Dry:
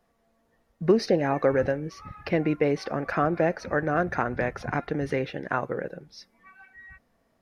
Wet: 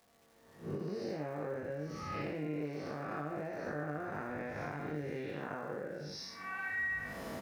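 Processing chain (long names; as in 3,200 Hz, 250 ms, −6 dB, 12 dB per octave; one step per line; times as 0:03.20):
spectrum smeared in time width 218 ms
camcorder AGC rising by 20 dB per second
high-pass filter 87 Hz 12 dB per octave
downward compressor, threshold −37 dBFS, peak gain reduction 14 dB
surface crackle 390 per second −55 dBFS
double-tracking delay 20 ms −4 dB
level −1 dB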